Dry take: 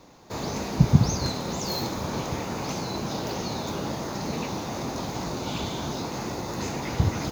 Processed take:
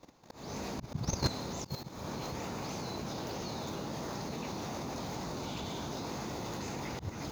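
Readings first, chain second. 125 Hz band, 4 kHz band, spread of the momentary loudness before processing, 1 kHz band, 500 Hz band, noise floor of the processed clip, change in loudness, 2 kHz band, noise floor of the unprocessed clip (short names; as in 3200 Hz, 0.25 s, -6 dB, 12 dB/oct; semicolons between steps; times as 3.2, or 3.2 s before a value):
-13.5 dB, -8.5 dB, 9 LU, -8.5 dB, -8.5 dB, -52 dBFS, -10.0 dB, -8.5 dB, -34 dBFS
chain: reverse delay 0.67 s, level -11 dB; level quantiser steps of 13 dB; auto swell 0.244 s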